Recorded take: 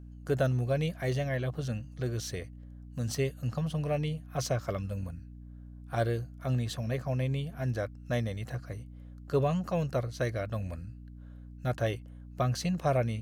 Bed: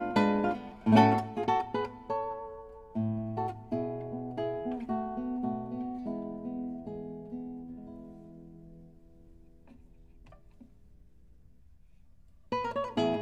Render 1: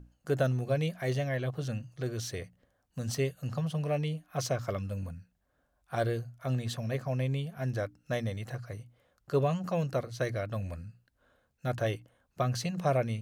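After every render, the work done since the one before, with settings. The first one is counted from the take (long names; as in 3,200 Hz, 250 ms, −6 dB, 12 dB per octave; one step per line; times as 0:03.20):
mains-hum notches 60/120/180/240/300 Hz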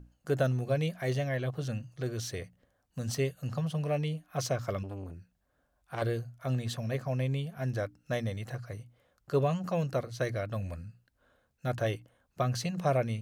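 0:04.83–0:06.02: saturating transformer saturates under 1,100 Hz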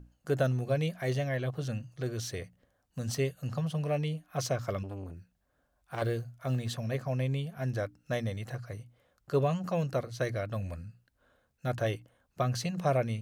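0:05.17–0:06.69: one scale factor per block 7 bits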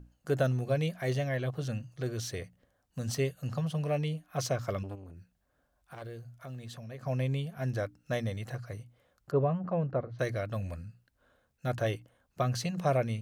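0:04.95–0:07.03: downward compressor 2.5 to 1, threshold −45 dBFS
0:09.31–0:10.19: low-pass filter 1,300 Hz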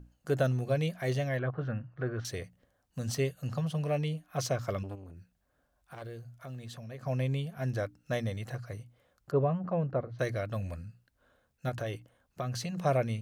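0:01.39–0:02.25: low-pass with resonance 1,500 Hz, resonance Q 2.2
0:11.69–0:12.83: downward compressor 3 to 1, threshold −32 dBFS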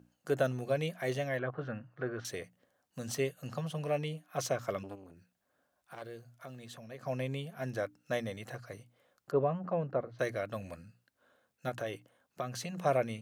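Bessel high-pass filter 230 Hz, order 2
dynamic equaliser 4,700 Hz, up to −5 dB, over −60 dBFS, Q 2.9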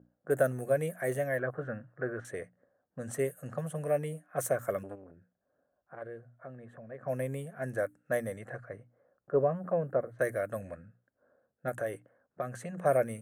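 low-pass that shuts in the quiet parts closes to 880 Hz, open at −32.5 dBFS
drawn EQ curve 330 Hz 0 dB, 570 Hz +5 dB, 940 Hz −4 dB, 1,700 Hz +5 dB, 2,700 Hz −11 dB, 5,000 Hz −17 dB, 8,600 Hz +11 dB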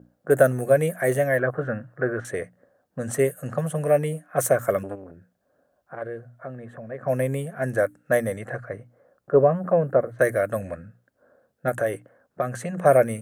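level +10 dB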